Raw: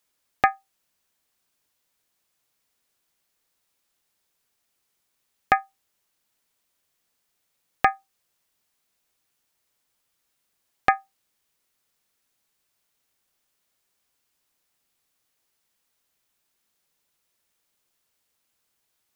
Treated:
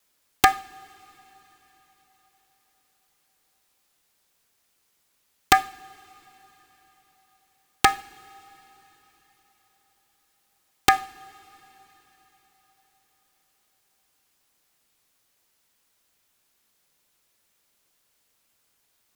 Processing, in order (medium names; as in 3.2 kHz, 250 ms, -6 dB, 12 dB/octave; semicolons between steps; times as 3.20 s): integer overflow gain 5.5 dB; wow and flutter 26 cents; two-slope reverb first 0.44 s, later 4.7 s, from -20 dB, DRR 15.5 dB; loudness maximiser +6.5 dB; trim -1 dB